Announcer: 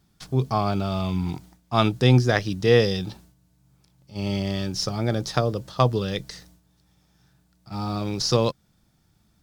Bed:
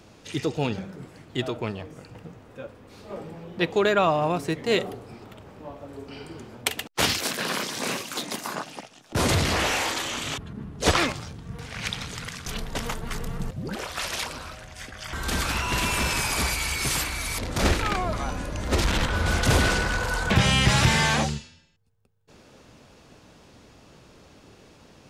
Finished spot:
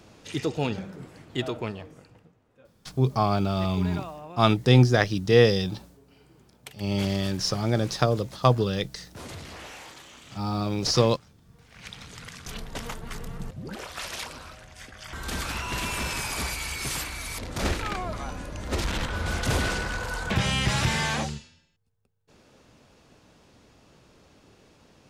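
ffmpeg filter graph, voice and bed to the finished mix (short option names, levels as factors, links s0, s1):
-filter_complex "[0:a]adelay=2650,volume=1[s0];[1:a]volume=3.98,afade=t=out:st=1.57:d=0.75:silence=0.141254,afade=t=in:st=11.65:d=0.78:silence=0.223872[s1];[s0][s1]amix=inputs=2:normalize=0"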